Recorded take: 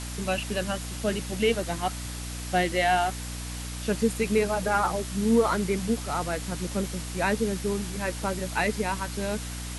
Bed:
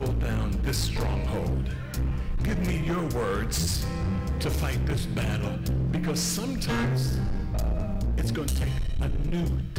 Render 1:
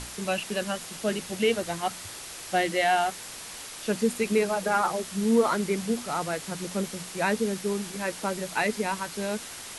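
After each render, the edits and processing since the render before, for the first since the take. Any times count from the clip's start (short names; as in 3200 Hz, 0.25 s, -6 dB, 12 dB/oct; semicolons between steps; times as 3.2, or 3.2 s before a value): notches 60/120/180/240/300 Hz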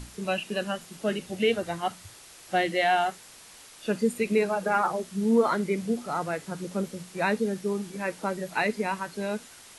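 noise print and reduce 9 dB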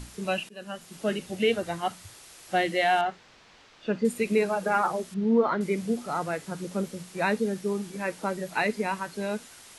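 0.49–0.99 fade in, from -24 dB; 3.01–4.05 air absorption 180 m; 5.14–5.61 air absorption 230 m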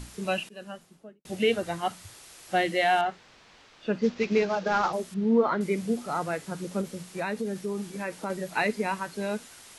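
0.45–1.25 studio fade out; 3.99–4.93 CVSD 32 kbps; 6.81–8.3 compressor 2.5:1, threshold -28 dBFS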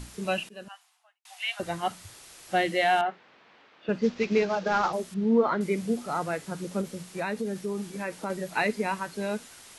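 0.68–1.6 rippled Chebyshev high-pass 700 Hz, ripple 3 dB; 3.01–3.89 BPF 200–2800 Hz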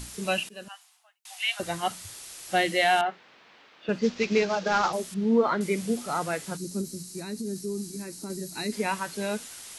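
6.56–8.72 spectral gain 410–3800 Hz -14 dB; high shelf 3100 Hz +8.5 dB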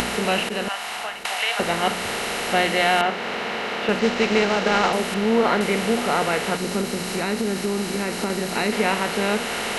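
per-bin compression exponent 0.4; upward compressor, threshold -21 dBFS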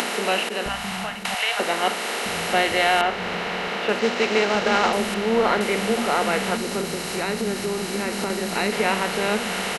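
bands offset in time highs, lows 0.66 s, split 210 Hz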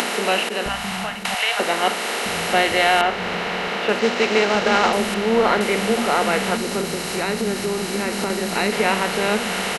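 gain +2.5 dB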